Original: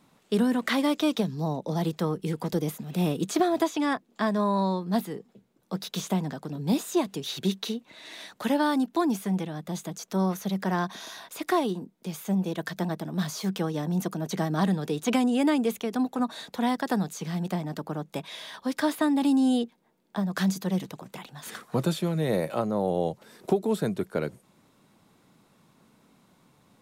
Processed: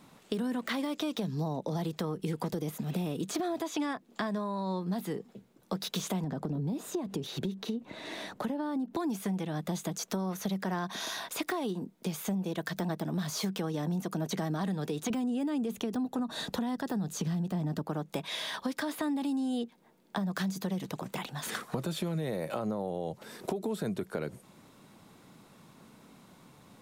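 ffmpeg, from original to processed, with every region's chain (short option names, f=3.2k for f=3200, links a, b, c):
-filter_complex "[0:a]asettb=1/sr,asplit=3[a][b][c];[a]atrim=end=6.244[d];[b]atrim=start=6.24:end=8.97,asetpts=PTS-STARTPTS,afade=t=in:d=0.004:c=qsin,afade=t=out:st=2.726:d=0.004:c=qsin,acompressor=threshold=-38dB:ratio=4:attack=3.2:release=140:knee=1:detection=peak,tiltshelf=f=1.2k:g=7[e];[c]atrim=start=8.966[f];[d][e]acrossfade=d=0.004:c1=hsin:c2=qsin[g];[g][f]acrossfade=d=0.004:c1=qsin:c2=hsin,asettb=1/sr,asplit=3[h][i][j];[h]atrim=end=15.104[k];[i]atrim=start=15.1:end=17.83,asetpts=PTS-STARTPTS,afade=t=in:d=0.004:c=qsin,afade=t=out:st=2.726:d=0.004:c=qsin,lowshelf=f=290:g=10.5,bandreject=f=2.2k:w=9.3[l];[j]atrim=start=17.826[m];[k][l]acrossfade=d=0.004:c1=hsin:c2=qsin[n];[n][m]acrossfade=d=0.004:c1=qsin:c2=hsin,deesser=0.75,alimiter=limit=-22dB:level=0:latency=1:release=81,acompressor=threshold=-35dB:ratio=6,volume=5dB"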